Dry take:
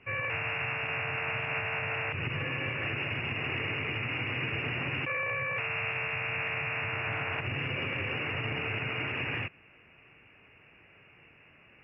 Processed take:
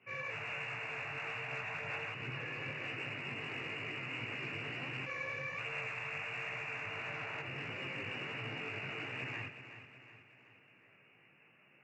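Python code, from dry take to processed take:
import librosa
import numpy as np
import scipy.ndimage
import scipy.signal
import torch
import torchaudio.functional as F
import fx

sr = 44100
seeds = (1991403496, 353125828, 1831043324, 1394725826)

y = scipy.signal.sosfilt(scipy.signal.butter(4, 120.0, 'highpass', fs=sr, output='sos'), x)
y = 10.0 ** (-25.0 / 20.0) * np.tanh(y / 10.0 ** (-25.0 / 20.0))
y = fx.chorus_voices(y, sr, voices=2, hz=1.3, base_ms=18, depth_ms=3.0, mix_pct=50)
y = fx.echo_feedback(y, sr, ms=370, feedback_pct=48, wet_db=-11.0)
y = y * 10.0 ** (-4.5 / 20.0)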